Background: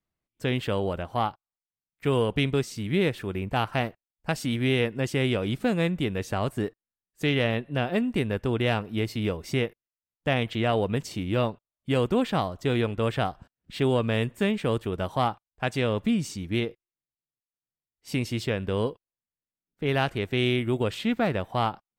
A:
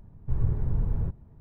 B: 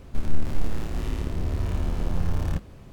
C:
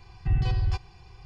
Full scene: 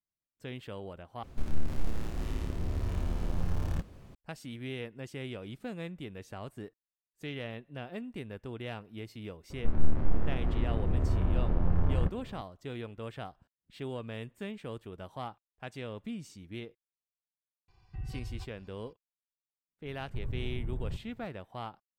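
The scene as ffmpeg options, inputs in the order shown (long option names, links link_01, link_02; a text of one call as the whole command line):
ffmpeg -i bed.wav -i cue0.wav -i cue1.wav -i cue2.wav -filter_complex "[2:a]asplit=2[link_01][link_02];[0:a]volume=-15dB[link_03];[link_02]lowpass=1500[link_04];[3:a]aecho=1:1:233:0.119[link_05];[1:a]acompressor=threshold=-27dB:ratio=6:attack=3.2:release=140:knee=1:detection=peak[link_06];[link_03]asplit=2[link_07][link_08];[link_07]atrim=end=1.234[link_09];[link_01]atrim=end=2.92,asetpts=PTS-STARTPTS,volume=-6dB[link_10];[link_08]atrim=start=4.146[link_11];[link_04]atrim=end=2.92,asetpts=PTS-STARTPTS,volume=-1.5dB,afade=type=in:duration=0.004:curve=hsin,afade=type=out:start_time=2.916:duration=0.004:curve=hsin,adelay=9500[link_12];[link_05]atrim=end=1.25,asetpts=PTS-STARTPTS,volume=-15.5dB,afade=type=in:duration=0.004:curve=hsin,afade=type=out:start_time=1.246:duration=0.004:curve=hsin,adelay=17680[link_13];[link_06]atrim=end=1.4,asetpts=PTS-STARTPTS,volume=-3.5dB,afade=type=in:duration=0.004:curve=hsin,afade=type=out:start_time=1.396:duration=0.004:curve=hsin,adelay=19860[link_14];[link_09][link_10]acrossfade=duration=0.004:curve1=hsin:curve2=hsin[link_15];[link_15][link_11]acrossfade=duration=0.004:curve1=hsin:curve2=hsin[link_16];[link_16][link_12][link_13][link_14]amix=inputs=4:normalize=0" out.wav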